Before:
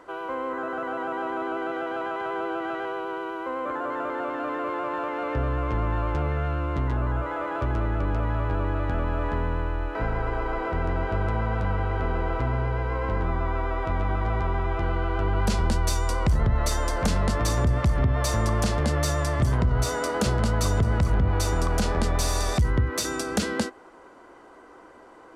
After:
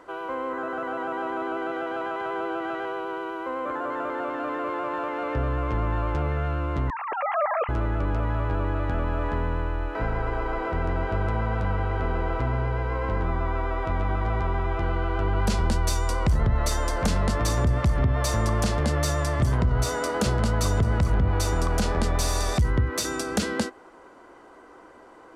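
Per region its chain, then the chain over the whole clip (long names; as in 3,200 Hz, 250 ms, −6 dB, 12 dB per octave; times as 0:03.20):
0:06.90–0:07.69: three sine waves on the formant tracks + notch filter 1,500 Hz, Q 8.8
whole clip: no processing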